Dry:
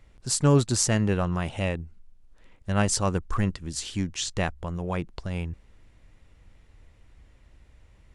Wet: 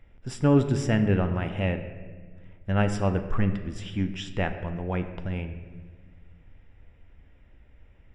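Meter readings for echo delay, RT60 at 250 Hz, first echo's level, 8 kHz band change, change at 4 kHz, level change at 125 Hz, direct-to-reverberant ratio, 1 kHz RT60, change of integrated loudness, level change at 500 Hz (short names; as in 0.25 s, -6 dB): none, 2.0 s, none, -17.5 dB, -7.5 dB, +0.5 dB, 7.5 dB, 1.3 s, -0.5 dB, +0.5 dB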